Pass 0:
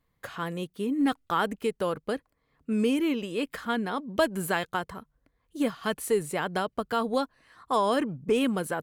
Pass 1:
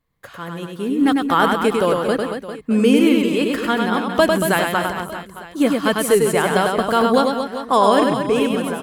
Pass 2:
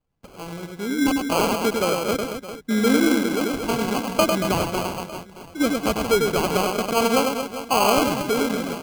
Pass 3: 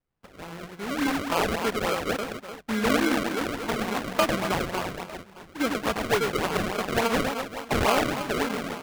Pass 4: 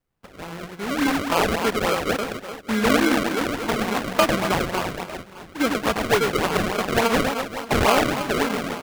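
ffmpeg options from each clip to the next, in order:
-filter_complex "[0:a]dynaudnorm=f=200:g=9:m=10.5dB,asplit=2[a][b];[b]aecho=0:1:100|230|399|618.7|904.3:0.631|0.398|0.251|0.158|0.1[c];[a][c]amix=inputs=2:normalize=0"
-af "acrusher=samples=24:mix=1:aa=0.000001,volume=-4.5dB"
-af "acrusher=samples=29:mix=1:aa=0.000001:lfo=1:lforange=46.4:lforate=3.5,equalizer=f=1.6k:t=o:w=2.7:g=6.5,volume=-7.5dB"
-af "aecho=1:1:576:0.075,volume=4.5dB"

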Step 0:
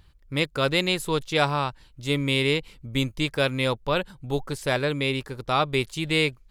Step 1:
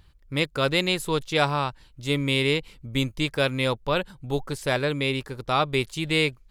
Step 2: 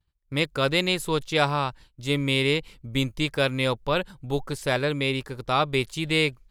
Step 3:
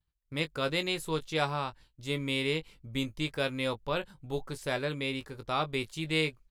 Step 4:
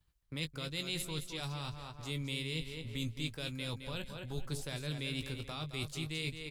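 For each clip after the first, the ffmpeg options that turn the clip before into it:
-af anull
-af "agate=range=-33dB:threshold=-42dB:ratio=3:detection=peak"
-filter_complex "[0:a]asplit=2[a][b];[b]adelay=19,volume=-9.5dB[c];[a][c]amix=inputs=2:normalize=0,volume=-8dB"
-filter_complex "[0:a]areverse,acompressor=threshold=-37dB:ratio=6,areverse,aecho=1:1:216|432|648|864:0.376|0.128|0.0434|0.0148,acrossover=split=200|3000[a][b][c];[b]acompressor=threshold=-52dB:ratio=6[d];[a][d][c]amix=inputs=3:normalize=0,volume=7dB"

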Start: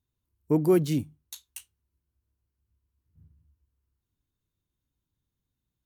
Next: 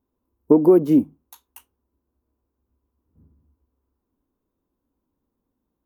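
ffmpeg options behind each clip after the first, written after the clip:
-af "equalizer=f=125:t=o:w=1:g=-10,equalizer=f=250:t=o:w=1:g=12,equalizer=f=500:t=o:w=1:g=9,equalizer=f=1k:t=o:w=1:g=9,equalizer=f=2k:t=o:w=1:g=-5,equalizer=f=4k:t=o:w=1:g=-11,equalizer=f=8k:t=o:w=1:g=-12,acompressor=threshold=-13dB:ratio=6,volume=3.5dB"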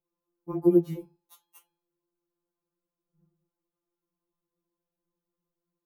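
-af "bandreject=f=142.6:t=h:w=4,bandreject=f=285.2:t=h:w=4,bandreject=f=427.8:t=h:w=4,bandreject=f=570.4:t=h:w=4,bandreject=f=713:t=h:w=4,bandreject=f=855.6:t=h:w=4,bandreject=f=998.2:t=h:w=4,bandreject=f=1.1408k:t=h:w=4,bandreject=f=1.2834k:t=h:w=4,bandreject=f=1.426k:t=h:w=4,bandreject=f=1.5686k:t=h:w=4,bandreject=f=1.7112k:t=h:w=4,bandreject=f=1.8538k:t=h:w=4,bandreject=f=1.9964k:t=h:w=4,bandreject=f=2.139k:t=h:w=4,bandreject=f=2.2816k:t=h:w=4,bandreject=f=2.4242k:t=h:w=4,bandreject=f=2.5668k:t=h:w=4,bandreject=f=2.7094k:t=h:w=4,bandreject=f=2.852k:t=h:w=4,bandreject=f=2.9946k:t=h:w=4,bandreject=f=3.1372k:t=h:w=4,bandreject=f=3.2798k:t=h:w=4,bandreject=f=3.4224k:t=h:w=4,bandreject=f=3.565k:t=h:w=4,bandreject=f=3.7076k:t=h:w=4,bandreject=f=3.8502k:t=h:w=4,bandreject=f=3.9928k:t=h:w=4,bandreject=f=4.1354k:t=h:w=4,bandreject=f=4.278k:t=h:w=4,bandreject=f=4.4206k:t=h:w=4,bandreject=f=4.5632k:t=h:w=4,bandreject=f=4.7058k:t=h:w=4,bandreject=f=4.8484k:t=h:w=4,bandreject=f=4.991k:t=h:w=4,bandreject=f=5.1336k:t=h:w=4,bandreject=f=5.2762k:t=h:w=4,afftfilt=real='re*2.83*eq(mod(b,8),0)':imag='im*2.83*eq(mod(b,8),0)':win_size=2048:overlap=0.75,volume=-6dB"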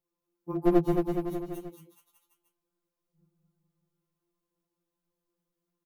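-filter_complex "[0:a]aeval=exprs='clip(val(0),-1,0.0531)':c=same,asplit=2[a][b];[b]aecho=0:1:220|418|596.2|756.6|900.9:0.631|0.398|0.251|0.158|0.1[c];[a][c]amix=inputs=2:normalize=0"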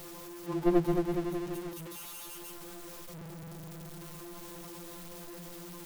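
-af "aeval=exprs='val(0)+0.5*0.0178*sgn(val(0))':c=same,volume=-3.5dB"

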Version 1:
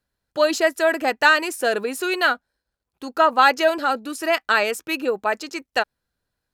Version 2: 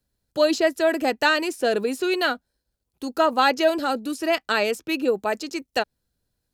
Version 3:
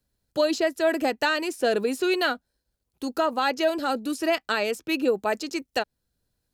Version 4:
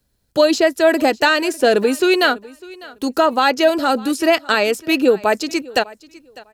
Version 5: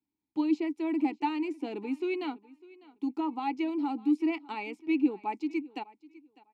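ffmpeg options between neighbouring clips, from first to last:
-filter_complex "[0:a]equalizer=f=1.4k:t=o:w=2.5:g=-11,acrossover=split=160|5200[a][b][c];[c]acompressor=threshold=-47dB:ratio=6[d];[a][b][d]amix=inputs=3:normalize=0,volume=5dB"
-af "alimiter=limit=-13dB:level=0:latency=1:release=451"
-af "aecho=1:1:601|1202:0.0841|0.016,volume=9dB"
-filter_complex "[0:a]asplit=3[a][b][c];[a]bandpass=f=300:t=q:w=8,volume=0dB[d];[b]bandpass=f=870:t=q:w=8,volume=-6dB[e];[c]bandpass=f=2.24k:t=q:w=8,volume=-9dB[f];[d][e][f]amix=inputs=3:normalize=0,volume=-4.5dB"

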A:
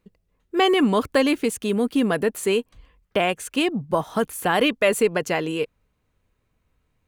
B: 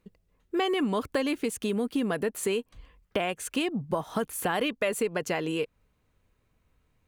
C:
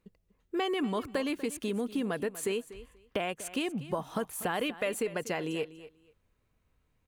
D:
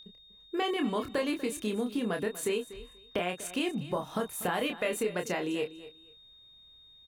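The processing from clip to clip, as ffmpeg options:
-af "acompressor=threshold=-27dB:ratio=3"
-af "aecho=1:1:242|484:0.158|0.0285,volume=-4dB"
-filter_complex "[0:a]aeval=exprs='val(0)+0.00398*sin(2*PI*3700*n/s)':c=same,asplit=2[a][b];[b]adelay=28,volume=-5.5dB[c];[a][c]amix=inputs=2:normalize=0"

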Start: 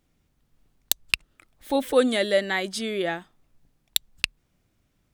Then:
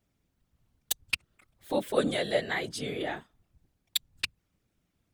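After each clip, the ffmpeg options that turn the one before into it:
-af "afftfilt=real='hypot(re,im)*cos(2*PI*random(0))':imag='hypot(re,im)*sin(2*PI*random(1))':win_size=512:overlap=0.75"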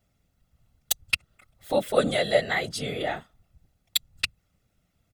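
-af "aecho=1:1:1.5:0.43,volume=4dB"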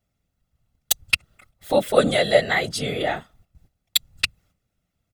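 -af "agate=range=-10dB:threshold=-59dB:ratio=16:detection=peak,volume=5dB"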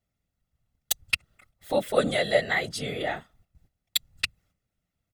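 -af "equalizer=f=1.9k:t=o:w=0.31:g=3,volume=-6dB"

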